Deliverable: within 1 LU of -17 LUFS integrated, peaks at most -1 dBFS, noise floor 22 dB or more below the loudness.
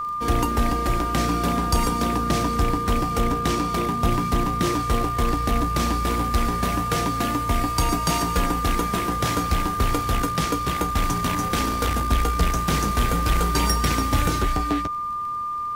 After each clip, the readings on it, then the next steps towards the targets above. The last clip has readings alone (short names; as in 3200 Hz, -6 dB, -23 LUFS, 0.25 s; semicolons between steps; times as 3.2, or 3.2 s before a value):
ticks 20/s; steady tone 1200 Hz; tone level -25 dBFS; loudness -23.0 LUFS; peak -7.0 dBFS; loudness target -17.0 LUFS
-> de-click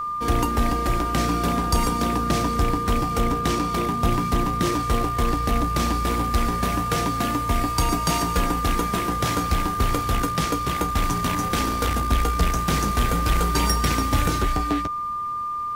ticks 0.13/s; steady tone 1200 Hz; tone level -25 dBFS
-> notch 1200 Hz, Q 30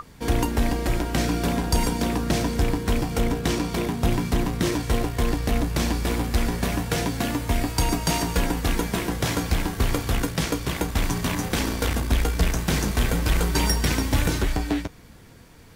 steady tone none; loudness -25.0 LUFS; peak -8.0 dBFS; loudness target -17.0 LUFS
-> gain +8 dB; limiter -1 dBFS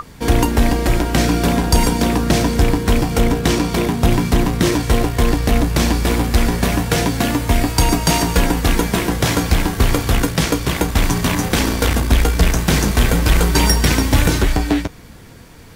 loudness -17.0 LUFS; peak -1.0 dBFS; noise floor -40 dBFS